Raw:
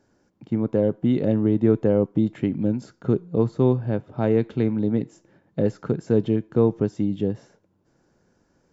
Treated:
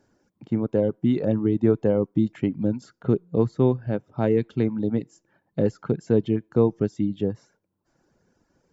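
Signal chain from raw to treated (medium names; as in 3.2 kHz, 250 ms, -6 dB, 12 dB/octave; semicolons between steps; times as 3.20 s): reverb removal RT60 0.84 s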